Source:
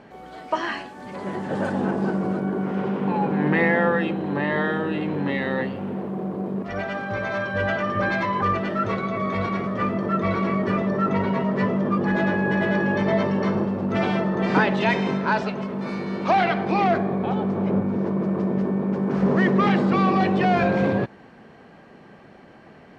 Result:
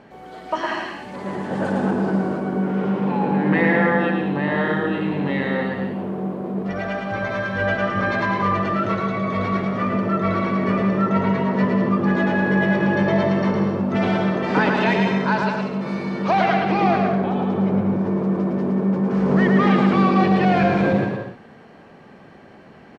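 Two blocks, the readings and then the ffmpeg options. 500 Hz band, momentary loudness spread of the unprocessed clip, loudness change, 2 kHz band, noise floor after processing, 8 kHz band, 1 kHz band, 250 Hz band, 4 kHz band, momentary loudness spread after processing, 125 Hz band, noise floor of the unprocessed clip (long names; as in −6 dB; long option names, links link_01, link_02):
+2.0 dB, 9 LU, +2.5 dB, +2.5 dB, −45 dBFS, can't be measured, +2.0 dB, +3.5 dB, +2.0 dB, 9 LU, +3.5 dB, −48 dBFS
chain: -af "aecho=1:1:110|187|240.9|278.6|305:0.631|0.398|0.251|0.158|0.1"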